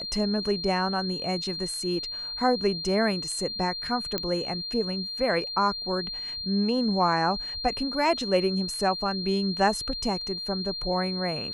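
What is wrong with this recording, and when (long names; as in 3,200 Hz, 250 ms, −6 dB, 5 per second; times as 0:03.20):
whistle 4,200 Hz −32 dBFS
0:04.18: click −13 dBFS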